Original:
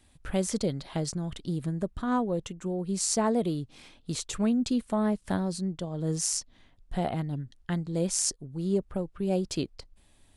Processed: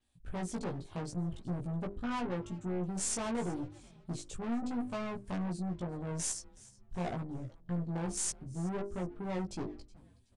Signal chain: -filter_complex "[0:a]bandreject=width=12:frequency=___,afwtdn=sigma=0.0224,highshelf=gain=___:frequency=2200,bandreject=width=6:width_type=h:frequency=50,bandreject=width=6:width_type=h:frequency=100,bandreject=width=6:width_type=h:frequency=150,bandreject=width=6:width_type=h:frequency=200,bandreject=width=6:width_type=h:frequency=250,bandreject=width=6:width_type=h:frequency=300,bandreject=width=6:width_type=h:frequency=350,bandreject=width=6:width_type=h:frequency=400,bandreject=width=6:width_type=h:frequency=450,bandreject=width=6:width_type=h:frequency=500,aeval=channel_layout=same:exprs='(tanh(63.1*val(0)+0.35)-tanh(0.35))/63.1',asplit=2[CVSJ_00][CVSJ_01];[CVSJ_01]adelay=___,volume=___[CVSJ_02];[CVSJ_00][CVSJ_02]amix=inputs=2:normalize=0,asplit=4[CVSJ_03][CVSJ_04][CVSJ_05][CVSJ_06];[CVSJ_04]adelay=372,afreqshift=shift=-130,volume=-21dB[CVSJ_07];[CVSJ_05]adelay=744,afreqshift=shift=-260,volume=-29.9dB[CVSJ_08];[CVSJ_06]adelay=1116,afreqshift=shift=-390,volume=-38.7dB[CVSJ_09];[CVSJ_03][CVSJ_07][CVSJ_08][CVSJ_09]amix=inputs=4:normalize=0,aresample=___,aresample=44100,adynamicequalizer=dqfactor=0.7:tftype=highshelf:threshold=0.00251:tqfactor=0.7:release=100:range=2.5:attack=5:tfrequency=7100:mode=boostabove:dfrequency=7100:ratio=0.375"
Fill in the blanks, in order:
2000, 2.5, 17, -2.5dB, 22050